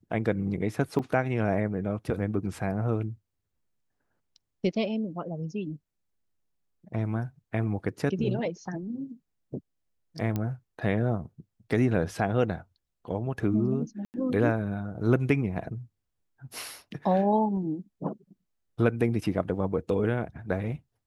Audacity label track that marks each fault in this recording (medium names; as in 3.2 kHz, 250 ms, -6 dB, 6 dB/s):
0.990000	0.990000	dropout 4.7 ms
10.360000	10.360000	pop -17 dBFS
14.050000	14.140000	dropout 89 ms